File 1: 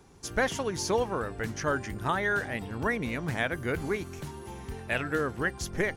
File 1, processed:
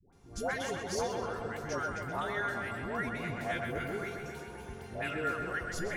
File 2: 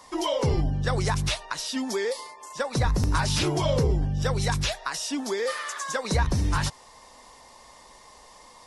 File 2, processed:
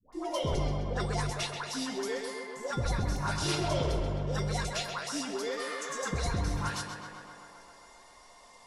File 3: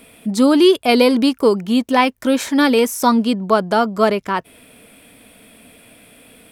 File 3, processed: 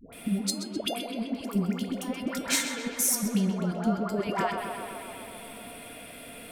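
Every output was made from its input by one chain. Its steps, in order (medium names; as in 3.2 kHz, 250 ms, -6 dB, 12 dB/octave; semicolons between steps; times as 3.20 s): compressor with a negative ratio -22 dBFS, ratio -0.5; feedback comb 700 Hz, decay 0.27 s, mix 80%; phase dispersion highs, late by 128 ms, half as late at 710 Hz; on a send: tape echo 130 ms, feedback 80%, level -5.5 dB, low-pass 4.1 kHz; on the sum: trim +5.5 dB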